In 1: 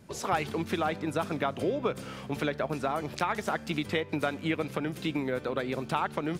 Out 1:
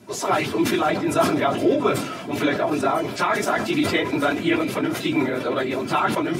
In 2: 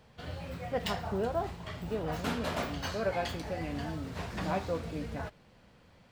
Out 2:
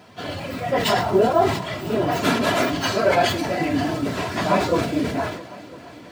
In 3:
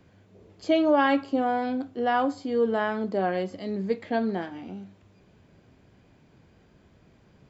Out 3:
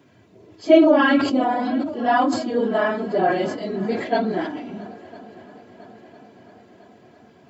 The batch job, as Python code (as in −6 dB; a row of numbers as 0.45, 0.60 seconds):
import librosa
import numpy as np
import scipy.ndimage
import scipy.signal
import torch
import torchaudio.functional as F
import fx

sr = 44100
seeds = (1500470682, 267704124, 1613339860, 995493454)

y = fx.phase_scramble(x, sr, seeds[0], window_ms=50)
y = scipy.signal.sosfilt(scipy.signal.butter(4, 110.0, 'highpass', fs=sr, output='sos'), y)
y = y + 0.46 * np.pad(y, (int(3.0 * sr / 1000.0), 0))[:len(y)]
y = fx.echo_heads(y, sr, ms=334, heads='second and third', feedback_pct=62, wet_db=-22.0)
y = fx.sustainer(y, sr, db_per_s=66.0)
y = y * 10.0 ** (-22 / 20.0) / np.sqrt(np.mean(np.square(y)))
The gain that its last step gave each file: +7.5, +13.0, +4.5 decibels